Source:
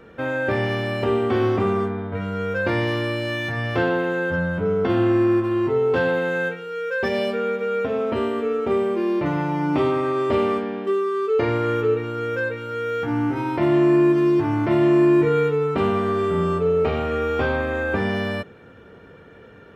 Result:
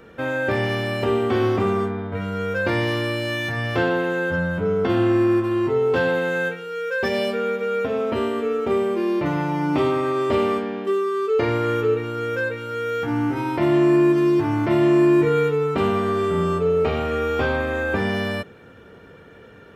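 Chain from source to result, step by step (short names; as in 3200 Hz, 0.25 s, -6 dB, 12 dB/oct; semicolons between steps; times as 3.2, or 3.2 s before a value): high shelf 4800 Hz +7.5 dB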